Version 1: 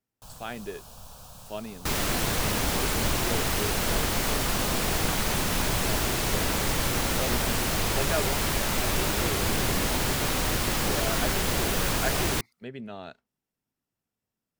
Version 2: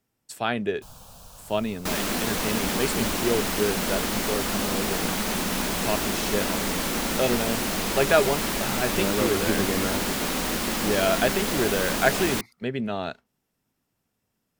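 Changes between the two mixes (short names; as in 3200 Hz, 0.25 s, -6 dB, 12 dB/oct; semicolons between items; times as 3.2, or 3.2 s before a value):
speech +10.5 dB; first sound: entry +0.60 s; second sound: add resonant low shelf 160 Hz -6.5 dB, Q 3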